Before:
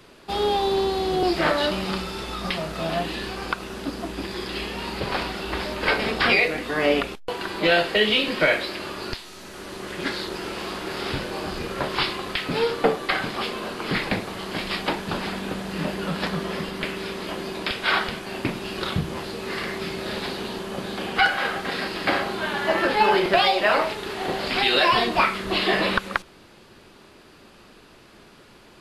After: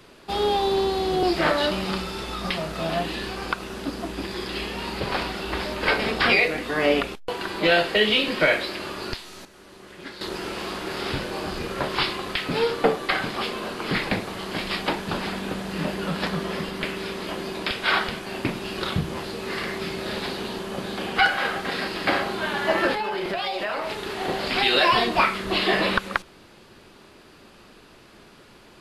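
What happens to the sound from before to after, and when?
0:09.45–0:10.21: clip gain −11 dB
0:22.94–0:24.07: downward compressor, threshold −24 dBFS

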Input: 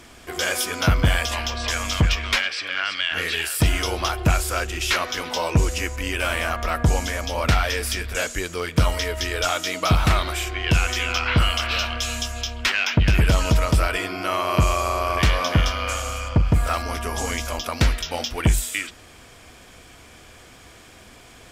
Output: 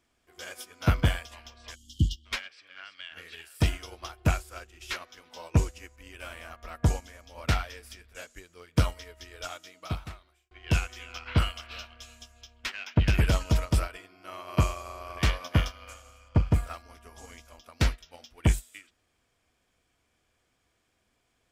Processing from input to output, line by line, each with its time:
0:01.75–0:02.26: time-frequency box erased 360–2,800 Hz
0:09.62–0:10.51: fade out
0:15.36–0:15.94: high-shelf EQ 11,000 Hz +7.5 dB
whole clip: expander for the loud parts 2.5 to 1, over −29 dBFS; level −2.5 dB

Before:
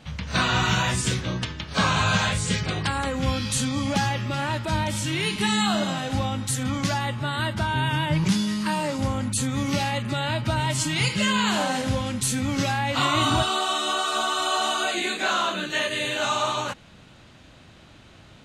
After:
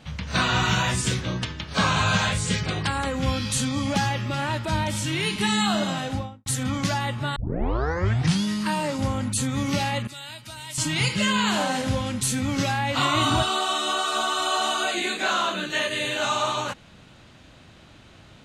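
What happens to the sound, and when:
0:06.01–0:06.46: fade out and dull
0:07.36: tape start 1.08 s
0:10.07–0:10.78: first-order pre-emphasis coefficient 0.9

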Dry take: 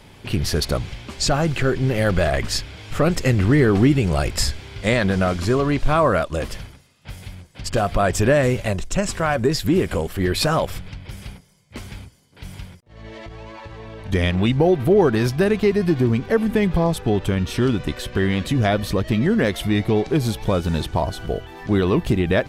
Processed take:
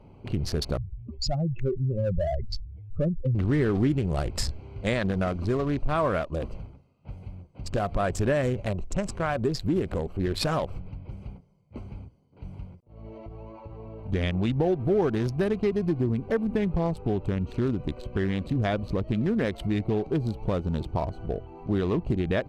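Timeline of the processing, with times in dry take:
0:00.77–0:03.35: expanding power law on the bin magnitudes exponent 2.7
whole clip: adaptive Wiener filter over 25 samples; high-shelf EQ 11,000 Hz −8 dB; downward compressor 1.5 to 1, threshold −24 dBFS; level −3.5 dB

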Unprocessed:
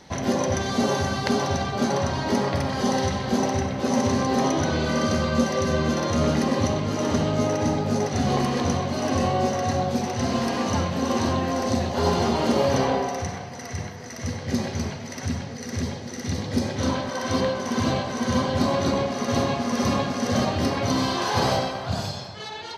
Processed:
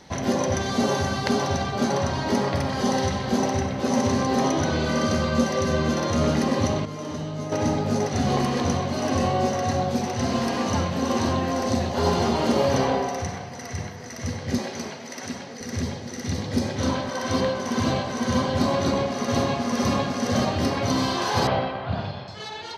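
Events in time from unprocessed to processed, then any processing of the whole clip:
0:06.85–0:07.52: tuned comb filter 150 Hz, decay 0.27 s, mix 80%
0:14.58–0:15.61: high-pass filter 260 Hz
0:21.47–0:22.28: low-pass filter 3,300 Hz 24 dB per octave

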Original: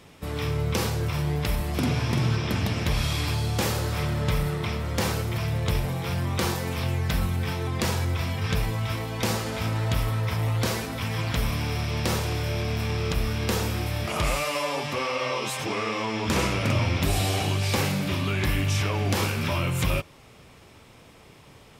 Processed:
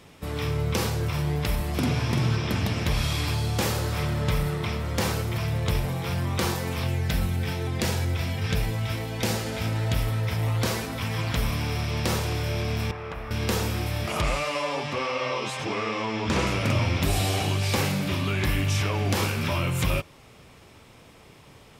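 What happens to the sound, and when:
0:06.87–0:10.43: parametric band 1,100 Hz −7 dB 0.41 octaves
0:12.91–0:13.31: three-way crossover with the lows and the highs turned down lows −12 dB, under 520 Hz, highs −20 dB, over 2,100 Hz
0:14.21–0:16.47: high-frequency loss of the air 55 metres

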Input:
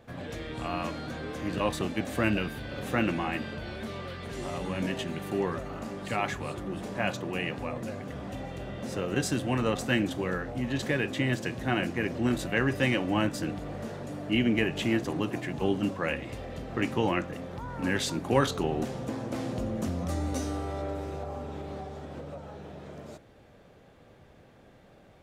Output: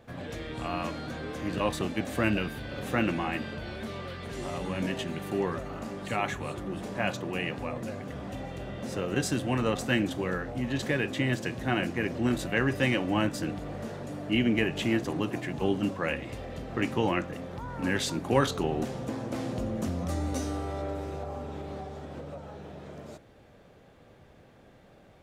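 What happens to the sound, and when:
0:06.07–0:06.55: notch filter 4,900 Hz, Q 7

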